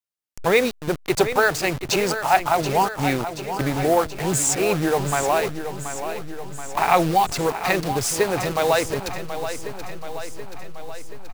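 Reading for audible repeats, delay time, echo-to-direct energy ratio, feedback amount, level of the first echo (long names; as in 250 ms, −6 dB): 6, 729 ms, −8.0 dB, 60%, −10.0 dB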